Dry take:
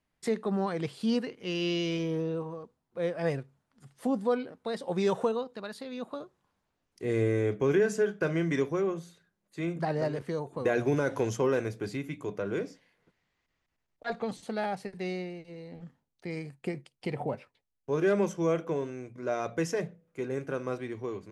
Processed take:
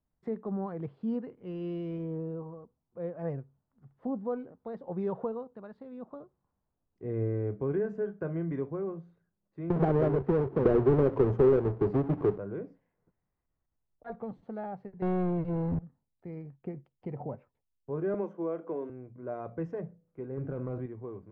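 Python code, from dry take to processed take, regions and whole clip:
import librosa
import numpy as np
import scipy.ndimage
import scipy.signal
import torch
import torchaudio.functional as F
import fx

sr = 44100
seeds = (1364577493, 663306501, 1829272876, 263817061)

y = fx.chain(x, sr, fx.halfwave_hold(),
    fx.peak_eq(hz=400.0, db=11.0, octaves=0.5),
    fx.band_squash(depth_pct=70), at=(9.7, 12.38))
y = fx.chain(y, sr, fx.low_shelf(hz=200.0, db=11.0),
    fx.leveller(passes=5), at=(15.02, 15.79))
y = fx.chain(y, sr, fx.highpass(hz=230.0, slope=24),
    fx.band_squash(depth_pct=70), at=(18.14, 18.9))
y = fx.chain(y, sr, fx.low_shelf(hz=190.0, db=8.5),
    fx.overload_stage(gain_db=25.0),
    fx.env_flatten(amount_pct=70), at=(20.37, 20.86))
y = scipy.signal.sosfilt(scipy.signal.cheby1(2, 1.0, 1000.0, 'lowpass', fs=sr, output='sos'), y)
y = fx.low_shelf(y, sr, hz=170.0, db=10.5)
y = F.gain(torch.from_numpy(y), -7.0).numpy()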